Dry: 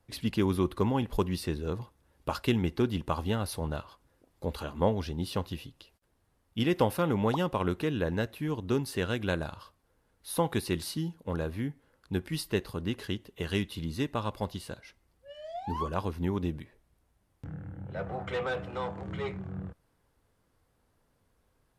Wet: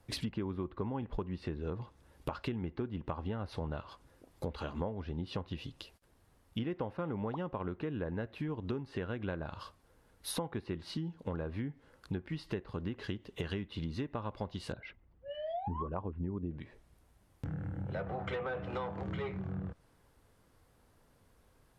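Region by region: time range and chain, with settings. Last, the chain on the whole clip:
14.72–16.51 formant sharpening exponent 1.5 + LPF 3300 Hz 24 dB/oct
whole clip: treble ducked by the level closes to 1900 Hz, closed at -27.5 dBFS; compressor 6:1, threshold -40 dBFS; gain +5 dB

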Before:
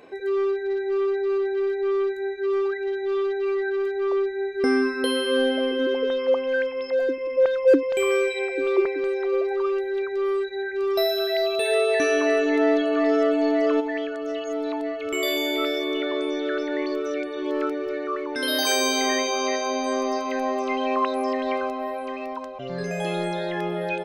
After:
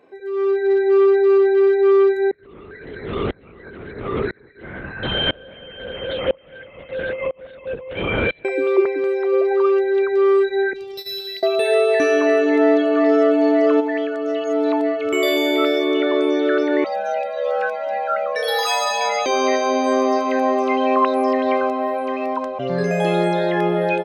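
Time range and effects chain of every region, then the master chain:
2.31–8.45 tilt +4.5 dB/oct + LPC vocoder at 8 kHz whisper + dB-ramp tremolo swelling 1 Hz, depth 30 dB
10.73–11.43 Chebyshev band-stop 190–3300 Hz + core saturation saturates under 670 Hz
16.84–19.26 frequency shift +200 Hz + cascading flanger falling 1 Hz
whole clip: HPF 85 Hz 6 dB/oct; high shelf 2800 Hz -9 dB; AGC gain up to 16 dB; gain -5 dB

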